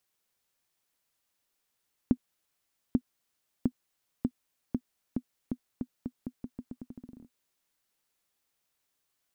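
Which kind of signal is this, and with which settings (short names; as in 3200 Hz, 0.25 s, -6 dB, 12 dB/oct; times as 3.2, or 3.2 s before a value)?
bouncing ball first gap 0.84 s, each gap 0.84, 248 Hz, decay 62 ms -11.5 dBFS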